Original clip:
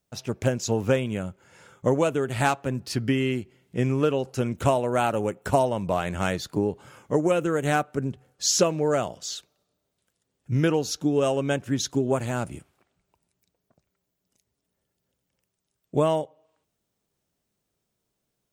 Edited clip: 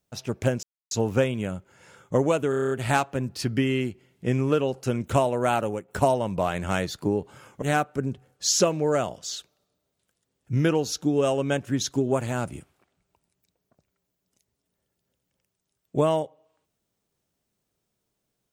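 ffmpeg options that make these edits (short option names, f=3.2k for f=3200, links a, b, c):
-filter_complex "[0:a]asplit=11[a][b][c][d][e][f][g][h][i][j][k];[a]atrim=end=0.63,asetpts=PTS-STARTPTS,afade=t=out:st=0.626:d=0.004:c=hsin,apad=pad_dur=0.28[l];[b]atrim=start=0.63:end=2.252,asetpts=PTS-STARTPTS,afade=t=in:d=0.004:c=hsin[m];[c]atrim=start=2.218:end=2.252[n];[d]atrim=start=2.218:end=2.252[o];[e]atrim=start=2.218:end=2.252[p];[f]atrim=start=2.218:end=2.252[q];[g]atrim=start=2.218:end=2.252[r];[h]atrim=start=2.218:end=2.252[s];[i]atrim=start=2.218:end=5.39,asetpts=PTS-STARTPTS,afade=t=out:st=2.882:d=0.29:silence=0.316228[t];[j]atrim=start=5.39:end=7.132,asetpts=PTS-STARTPTS,afade=t=in:d=0.004:c=hsin:silence=0.316228[u];[k]atrim=start=7.608[v];[l][m]concat=n=2:v=0:a=1[w];[w][n]acrossfade=d=0.004:c1=hsin:c2=hsin[x];[x][o]acrossfade=d=0.004:c1=hsin:c2=hsin[y];[y][p]acrossfade=d=0.004:c1=hsin:c2=hsin[z];[z][q]acrossfade=d=0.004:c1=hsin:c2=hsin[aa];[aa][r]acrossfade=d=0.004:c1=hsin:c2=hsin[ab];[ab][s]acrossfade=d=0.004:c1=hsin:c2=hsin[ac];[t][u]concat=n=2:v=0:a=1[ad];[ac][ad]acrossfade=d=0.004:c1=hsin:c2=hsin[ae];[ae][v]acrossfade=d=0.004:c1=hsin:c2=hsin"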